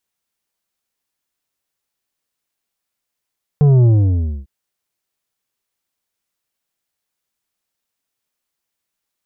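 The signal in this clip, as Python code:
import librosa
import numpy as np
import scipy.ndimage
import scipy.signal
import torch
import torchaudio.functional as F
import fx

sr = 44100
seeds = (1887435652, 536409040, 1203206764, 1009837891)

y = fx.sub_drop(sr, level_db=-8.5, start_hz=150.0, length_s=0.85, drive_db=8, fade_s=0.61, end_hz=65.0)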